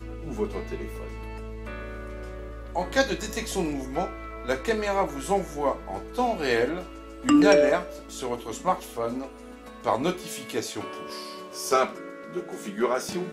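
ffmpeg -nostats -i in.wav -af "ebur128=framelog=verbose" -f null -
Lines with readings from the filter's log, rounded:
Integrated loudness:
  I:         -27.4 LUFS
  Threshold: -37.9 LUFS
Loudness range:
  LRA:         6.9 LU
  Threshold: -47.4 LUFS
  LRA low:   -31.1 LUFS
  LRA high:  -24.2 LUFS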